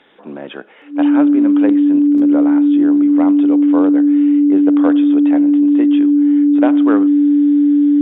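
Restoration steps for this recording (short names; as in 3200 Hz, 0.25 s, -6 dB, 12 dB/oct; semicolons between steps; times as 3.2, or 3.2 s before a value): notch 290 Hz, Q 30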